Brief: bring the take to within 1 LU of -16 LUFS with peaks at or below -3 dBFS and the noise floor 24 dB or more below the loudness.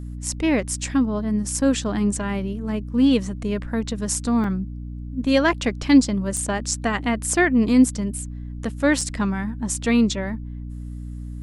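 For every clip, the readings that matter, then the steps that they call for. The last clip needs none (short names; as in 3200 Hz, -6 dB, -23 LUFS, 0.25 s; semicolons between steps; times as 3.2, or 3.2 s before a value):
dropouts 3; longest dropout 3.2 ms; hum 60 Hz; harmonics up to 300 Hz; hum level -30 dBFS; loudness -22.0 LUFS; peak -4.5 dBFS; loudness target -16.0 LUFS
-> interpolate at 4.44/6.37/9.01, 3.2 ms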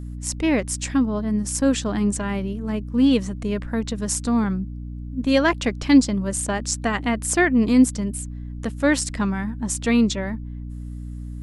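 dropouts 0; hum 60 Hz; harmonics up to 300 Hz; hum level -30 dBFS
-> de-hum 60 Hz, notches 5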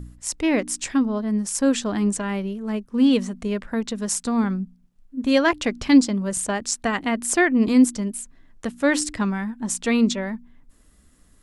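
hum none; loudness -22.0 LUFS; peak -5.0 dBFS; loudness target -16.0 LUFS
-> gain +6 dB; limiter -3 dBFS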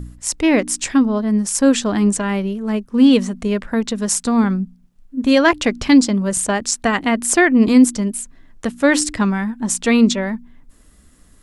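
loudness -16.5 LUFS; peak -3.0 dBFS; noise floor -50 dBFS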